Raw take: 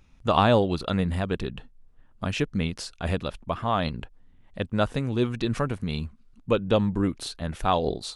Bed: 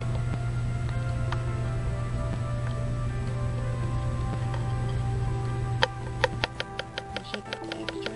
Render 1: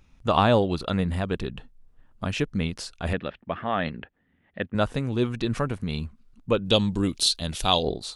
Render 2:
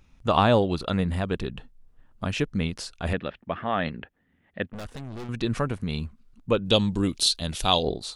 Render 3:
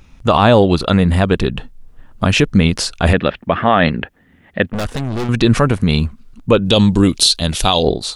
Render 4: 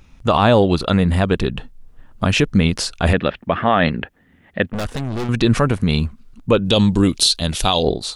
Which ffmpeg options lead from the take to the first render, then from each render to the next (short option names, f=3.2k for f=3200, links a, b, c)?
-filter_complex "[0:a]asettb=1/sr,asplit=3[a][b][c];[a]atrim=end=3.134[d];[b]atrim=start=3.13:end=4.75,asetpts=PTS-STARTPTS,afade=t=in:d=0.004:c=qsin,afade=t=out:st=1.616:d=0.004:c=qsin,highpass=110,equalizer=f=120:t=q:w=4:g=-8,equalizer=f=1k:t=q:w=4:g=-6,equalizer=f=1.8k:t=q:w=4:g=8,lowpass=f=3.3k:w=0.5412,lowpass=f=3.3k:w=1.3066[e];[c]atrim=start=4.746[f];[d][e]acrossfade=d=0.004:c1=hsin:c2=qsin[g];[g][f]acrossfade=d=0.004:c1=qsin:c2=hsin,asettb=1/sr,asplit=3[h][i][j];[h]atrim=end=6.654[k];[i]atrim=start=6.65:end=7.83,asetpts=PTS-STARTPTS,afade=t=in:d=0.004:c=qsin,afade=t=out:st=1.176:d=0.004:c=qsin,highshelf=f=2.5k:t=q:w=1.5:g=11.5[l];[j]atrim=start=7.826[m];[k][l]acrossfade=d=0.004:c1=hsin:c2=qsin[n];[n][m]acrossfade=d=0.004:c1=qsin:c2=hsin"
-filter_complex "[0:a]asettb=1/sr,asplit=3[a][b][c];[a]atrim=end=4.724[d];[b]atrim=start=4.72:end=5.29,asetpts=PTS-STARTPTS,afade=t=in:d=0.004:c=qsin,afade=t=out:st=0.566:d=0.004:c=qsin,aeval=exprs='(tanh(56.2*val(0)+0.7)-tanh(0.7))/56.2':c=same[e];[c]atrim=start=5.286[f];[d][e]acrossfade=d=0.004:c1=hsin:c2=qsin[g];[g][f]acrossfade=d=0.004:c1=qsin:c2=hsin"
-af "dynaudnorm=f=240:g=13:m=3.5dB,alimiter=level_in=13dB:limit=-1dB:release=50:level=0:latency=1"
-af "volume=-3dB"